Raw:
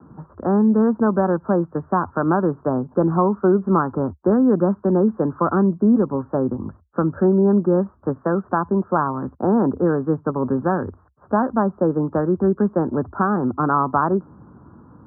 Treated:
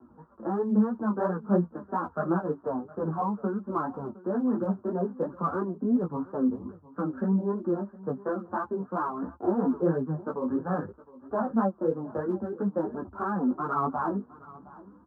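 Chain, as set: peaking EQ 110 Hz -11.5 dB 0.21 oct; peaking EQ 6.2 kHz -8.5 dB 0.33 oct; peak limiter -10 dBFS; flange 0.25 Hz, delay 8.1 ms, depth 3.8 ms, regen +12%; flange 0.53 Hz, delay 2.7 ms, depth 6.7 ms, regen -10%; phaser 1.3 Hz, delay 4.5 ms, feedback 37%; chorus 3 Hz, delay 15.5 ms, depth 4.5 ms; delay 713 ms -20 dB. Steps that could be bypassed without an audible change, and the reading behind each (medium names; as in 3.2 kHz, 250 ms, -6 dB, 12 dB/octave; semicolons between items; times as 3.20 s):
peaking EQ 6.2 kHz: input has nothing above 1.5 kHz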